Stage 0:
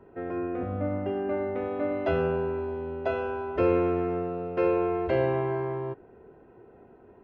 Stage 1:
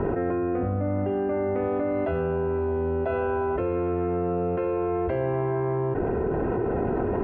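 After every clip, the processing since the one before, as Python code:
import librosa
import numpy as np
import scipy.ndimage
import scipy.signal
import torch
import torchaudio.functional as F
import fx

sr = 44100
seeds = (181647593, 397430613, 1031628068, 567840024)

y = scipy.signal.sosfilt(scipy.signal.butter(2, 2100.0, 'lowpass', fs=sr, output='sos'), x)
y = fx.low_shelf(y, sr, hz=130.0, db=6.0)
y = fx.env_flatten(y, sr, amount_pct=100)
y = y * 10.0 ** (-5.5 / 20.0)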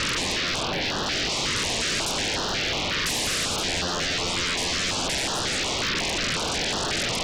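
y = fx.dmg_crackle(x, sr, seeds[0], per_s=150.0, level_db=-51.0)
y = fx.fold_sine(y, sr, drive_db=17, ceiling_db=-21.5)
y = fx.filter_held_notch(y, sr, hz=5.5, low_hz=750.0, high_hz=2200.0)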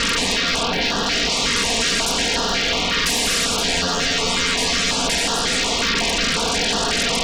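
y = x + 0.69 * np.pad(x, (int(4.3 * sr / 1000.0), 0))[:len(x)]
y = y * 10.0 ** (4.5 / 20.0)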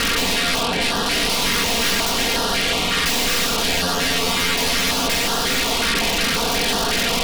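y = fx.tracing_dist(x, sr, depth_ms=0.074)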